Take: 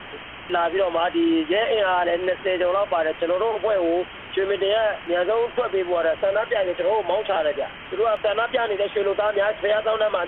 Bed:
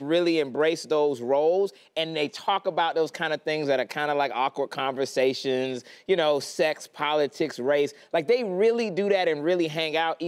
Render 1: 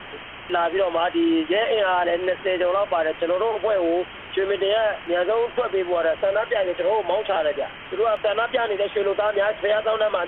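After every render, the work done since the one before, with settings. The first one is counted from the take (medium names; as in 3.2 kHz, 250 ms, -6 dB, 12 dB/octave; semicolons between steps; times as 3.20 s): de-hum 60 Hz, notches 5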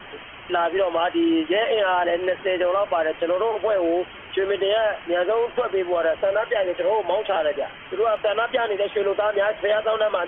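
noise reduction 8 dB, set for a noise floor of -39 dBFS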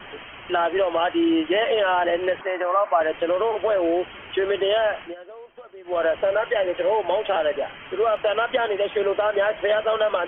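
2.41–3.01 s: cabinet simulation 380–2200 Hz, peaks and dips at 470 Hz -10 dB, 700 Hz +5 dB, 1.1 kHz +6 dB; 5.01–5.98 s: dip -20 dB, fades 0.14 s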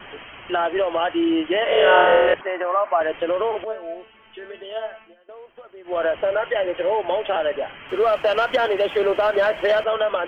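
1.64–2.34 s: flutter echo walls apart 4.3 m, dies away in 1.5 s; 3.64–5.29 s: feedback comb 220 Hz, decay 0.29 s, mix 90%; 7.89–9.84 s: waveshaping leveller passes 1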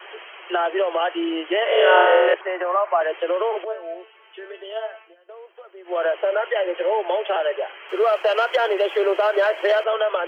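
steep high-pass 340 Hz 96 dB/octave; band-stop 3.6 kHz, Q 16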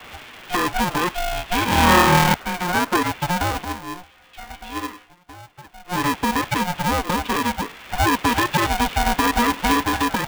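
polarity switched at an audio rate 360 Hz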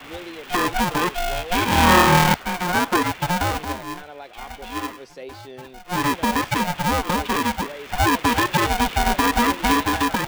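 add bed -14.5 dB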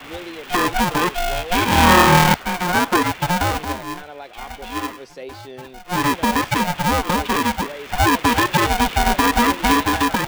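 trim +2.5 dB; peak limiter -2 dBFS, peak gain reduction 1.5 dB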